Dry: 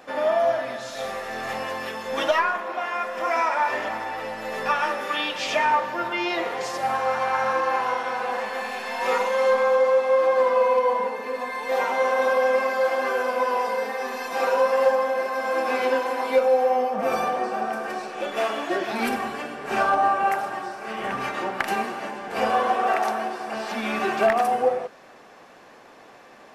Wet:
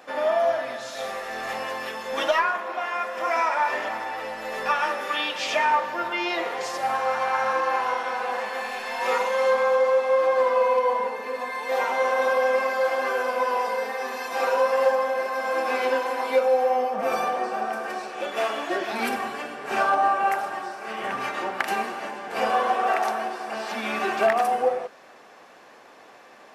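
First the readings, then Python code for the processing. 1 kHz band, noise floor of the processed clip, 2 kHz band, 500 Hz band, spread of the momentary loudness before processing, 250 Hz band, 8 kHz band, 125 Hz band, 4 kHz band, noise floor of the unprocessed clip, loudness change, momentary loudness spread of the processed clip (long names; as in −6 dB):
−0.5 dB, −49 dBFS, 0.0 dB, −1.5 dB, 11 LU, −3.5 dB, 0.0 dB, can't be measured, 0.0 dB, −48 dBFS, −1.0 dB, 10 LU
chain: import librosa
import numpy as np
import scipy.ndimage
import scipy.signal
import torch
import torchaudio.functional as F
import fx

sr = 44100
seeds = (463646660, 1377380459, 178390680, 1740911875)

y = fx.low_shelf(x, sr, hz=210.0, db=-9.5)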